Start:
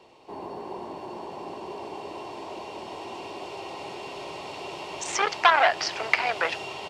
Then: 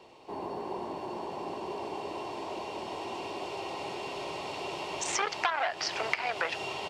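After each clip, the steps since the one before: compression 5:1, threshold -27 dBFS, peak gain reduction 13 dB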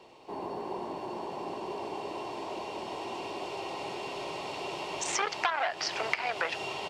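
peaking EQ 83 Hz -6 dB 0.31 oct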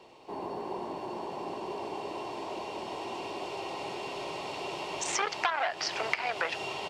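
no audible change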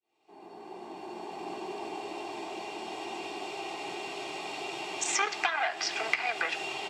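fade-in on the opening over 1.52 s; reverberation RT60 1.0 s, pre-delay 3 ms, DRR 9.5 dB

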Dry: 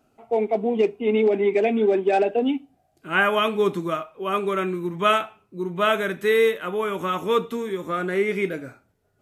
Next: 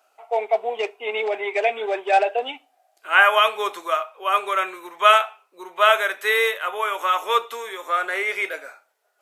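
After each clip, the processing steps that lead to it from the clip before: high-pass 620 Hz 24 dB/octave; trim +6 dB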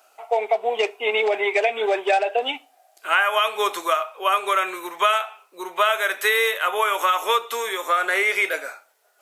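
treble shelf 4.3 kHz +5.5 dB; compression 6:1, threshold -22 dBFS, peak gain reduction 13 dB; trim +5.5 dB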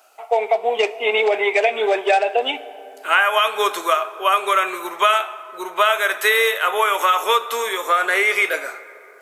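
plate-style reverb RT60 3.5 s, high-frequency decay 0.4×, DRR 15 dB; trim +3 dB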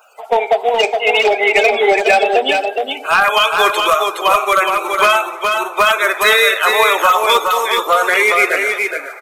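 coarse spectral quantiser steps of 30 dB; overload inside the chain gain 11 dB; delay 418 ms -4.5 dB; trim +5.5 dB

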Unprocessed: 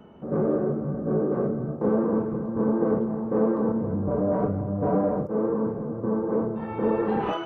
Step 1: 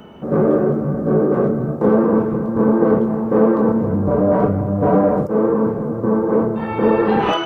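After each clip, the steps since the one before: treble shelf 2.2 kHz +10.5 dB; trim +8.5 dB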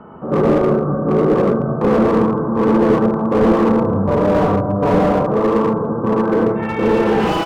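loudspeakers at several distances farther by 26 m -5 dB, 39 m -5 dB; low-pass sweep 1.2 kHz -> 2.9 kHz, 6.08–6.81 s; slew-rate limiter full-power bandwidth 160 Hz; trim -1 dB

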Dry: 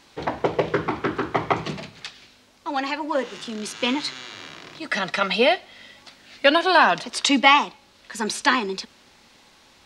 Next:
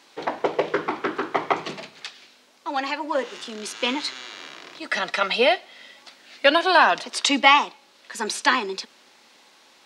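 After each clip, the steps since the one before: high-pass 300 Hz 12 dB/octave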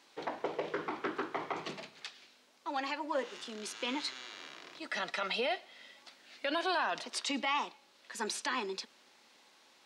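peak limiter -15.5 dBFS, peak gain reduction 12 dB; trim -9 dB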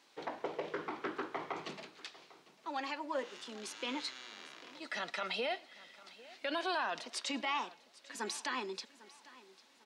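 feedback delay 799 ms, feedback 34%, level -20 dB; trim -3 dB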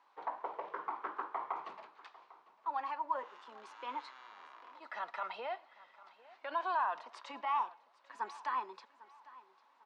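band-pass filter 1 kHz, Q 3.4; trim +7 dB

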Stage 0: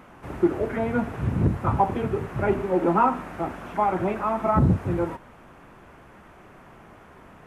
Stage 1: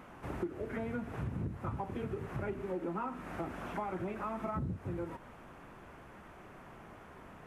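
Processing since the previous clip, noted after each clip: dynamic bell 800 Hz, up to -6 dB, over -34 dBFS, Q 1.3; compression 6:1, threshold -31 dBFS, peak gain reduction 15 dB; trim -4 dB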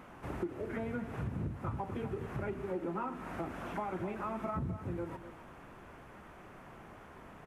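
delay 253 ms -12.5 dB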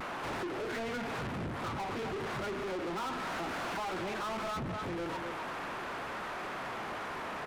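overdrive pedal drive 34 dB, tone 4.7 kHz, clips at -25.5 dBFS; vibrato 0.37 Hz 16 cents; trim -5 dB

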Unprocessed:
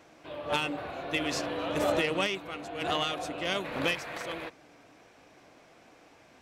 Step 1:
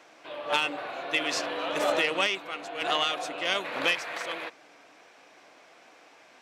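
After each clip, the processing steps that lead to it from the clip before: frequency weighting A; trim +3.5 dB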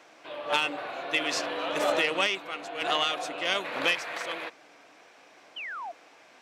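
painted sound fall, 5.56–5.92 s, 640–3200 Hz -37 dBFS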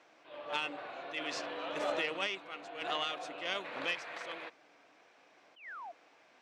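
distance through air 59 m; attacks held to a fixed rise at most 140 dB/s; trim -8 dB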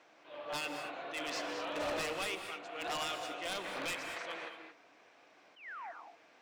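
wavefolder -31 dBFS; gated-style reverb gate 250 ms rising, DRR 6.5 dB

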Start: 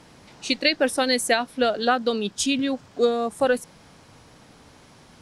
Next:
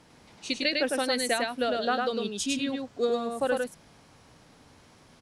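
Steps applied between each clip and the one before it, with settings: delay 103 ms -3 dB; trim -7 dB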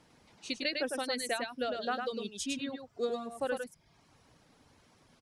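reverb removal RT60 0.68 s; trim -6 dB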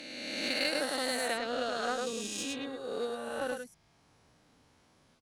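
reverse spectral sustain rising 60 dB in 2.28 s; Chebyshev shaper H 3 -27 dB, 7 -29 dB, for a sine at -14.5 dBFS; trim -1.5 dB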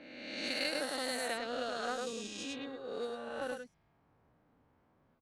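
level-controlled noise filter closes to 1.4 kHz, open at -28.5 dBFS; trim -4 dB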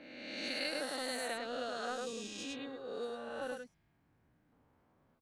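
in parallel at -5 dB: saturation -36.5 dBFS, distortion -9 dB; on the sum: time-frequency box 3.73–4.52 s, 370–1400 Hz -6 dB; trim -4.5 dB

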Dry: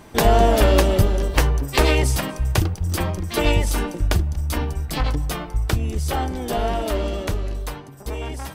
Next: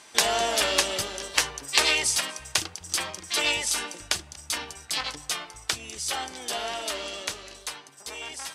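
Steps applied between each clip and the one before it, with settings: frequency weighting ITU-R 468; trim -6 dB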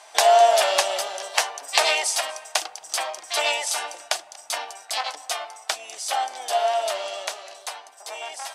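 resonant high-pass 690 Hz, resonance Q 4.9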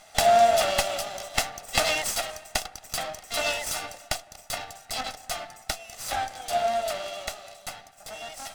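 comb filter that takes the minimum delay 1.5 ms; trim -3 dB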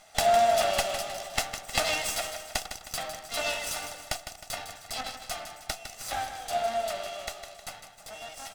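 feedback delay 156 ms, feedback 46%, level -9 dB; trim -3.5 dB

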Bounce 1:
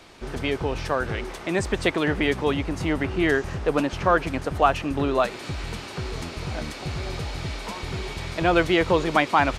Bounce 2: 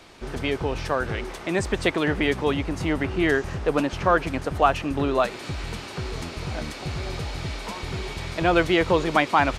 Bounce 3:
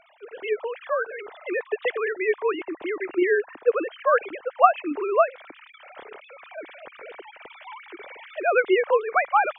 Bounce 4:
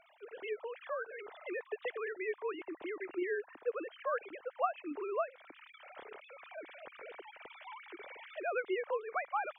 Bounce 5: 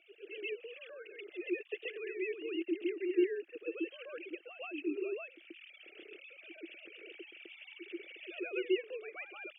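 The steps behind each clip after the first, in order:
no audible change
formants replaced by sine waves; trim -1 dB
compression 1.5:1, threshold -38 dBFS, peak gain reduction 10.5 dB; trim -7.5 dB
two resonant band-passes 960 Hz, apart 3 oct; on a send: reverse echo 132 ms -7.5 dB; on the sum: trim +10 dB

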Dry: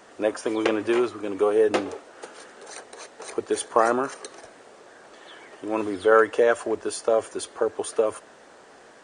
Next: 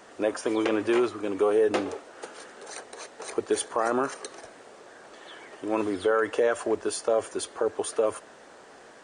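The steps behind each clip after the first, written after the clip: peak limiter -14.5 dBFS, peak gain reduction 9 dB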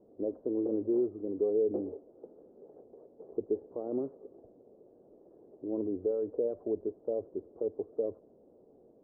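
inverse Chebyshev low-pass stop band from 2.9 kHz, stop band 80 dB; trim -4.5 dB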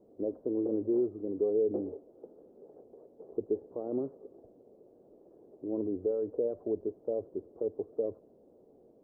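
dynamic bell 130 Hz, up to +3 dB, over -54 dBFS, Q 1.5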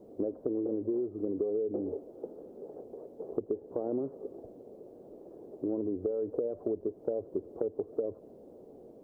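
compression 12:1, threshold -37 dBFS, peak gain reduction 13 dB; trim +8.5 dB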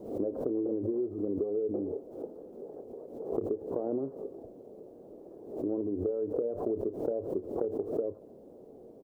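doubling 30 ms -13 dB; swell ahead of each attack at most 87 dB/s

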